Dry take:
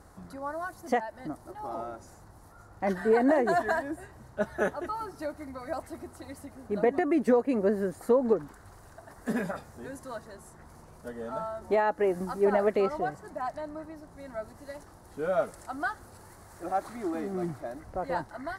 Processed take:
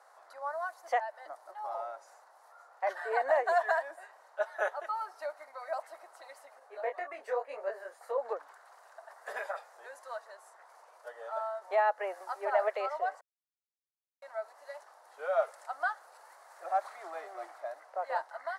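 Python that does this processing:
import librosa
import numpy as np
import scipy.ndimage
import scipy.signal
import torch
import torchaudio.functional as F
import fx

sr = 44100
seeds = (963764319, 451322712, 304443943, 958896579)

y = fx.detune_double(x, sr, cents=33, at=(6.59, 8.18))
y = fx.edit(y, sr, fx.silence(start_s=13.21, length_s=1.01), tone=tone)
y = scipy.signal.sosfilt(scipy.signal.butter(6, 570.0, 'highpass', fs=sr, output='sos'), y)
y = fx.high_shelf(y, sr, hz=5700.0, db=-11.5)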